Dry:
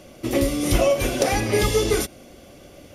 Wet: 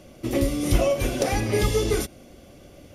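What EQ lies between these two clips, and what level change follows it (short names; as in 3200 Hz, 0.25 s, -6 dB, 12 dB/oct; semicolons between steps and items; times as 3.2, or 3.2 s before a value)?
low shelf 270 Hz +5.5 dB; -4.5 dB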